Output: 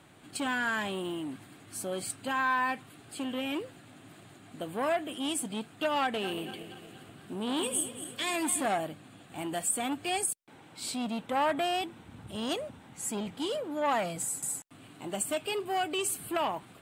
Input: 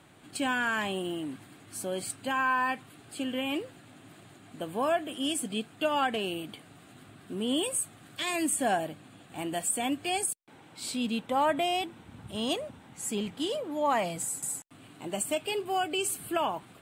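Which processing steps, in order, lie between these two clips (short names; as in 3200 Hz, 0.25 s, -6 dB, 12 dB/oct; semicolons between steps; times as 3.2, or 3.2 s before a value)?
6.04–8.66 regenerating reverse delay 0.118 s, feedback 70%, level -11.5 dB; core saturation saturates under 1100 Hz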